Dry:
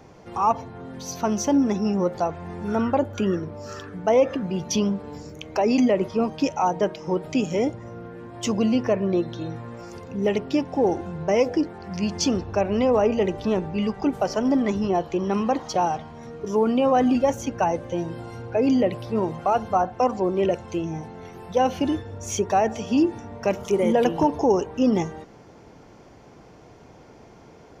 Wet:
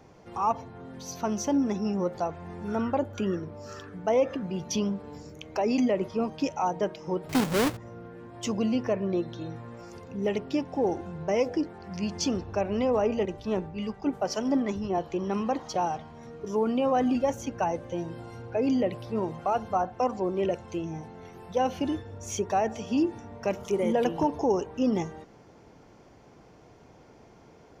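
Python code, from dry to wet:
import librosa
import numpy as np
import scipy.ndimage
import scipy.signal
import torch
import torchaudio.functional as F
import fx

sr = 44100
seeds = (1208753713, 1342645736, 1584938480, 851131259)

y = fx.halfwave_hold(x, sr, at=(7.29, 7.77))
y = fx.band_widen(y, sr, depth_pct=100, at=(13.25, 14.98))
y = y * librosa.db_to_amplitude(-5.5)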